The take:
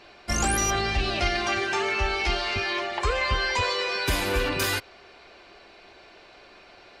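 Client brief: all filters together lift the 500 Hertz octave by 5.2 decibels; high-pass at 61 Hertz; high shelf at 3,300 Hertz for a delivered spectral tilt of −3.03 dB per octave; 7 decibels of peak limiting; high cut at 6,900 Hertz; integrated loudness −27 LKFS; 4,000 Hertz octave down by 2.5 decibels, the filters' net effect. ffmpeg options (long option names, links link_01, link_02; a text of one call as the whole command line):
ffmpeg -i in.wav -af "highpass=61,lowpass=6900,equalizer=frequency=500:width_type=o:gain=6.5,highshelf=frequency=3300:gain=7,equalizer=frequency=4000:width_type=o:gain=-8,alimiter=limit=-18.5dB:level=0:latency=1" out.wav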